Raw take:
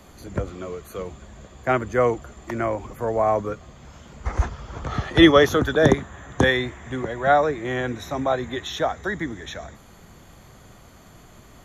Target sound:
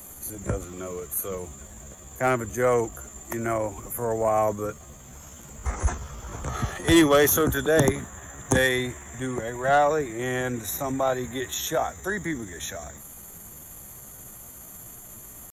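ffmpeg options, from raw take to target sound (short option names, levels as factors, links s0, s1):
-af "acontrast=87,aexciter=amount=7:drive=8.5:freq=6900,atempo=0.75,volume=0.355"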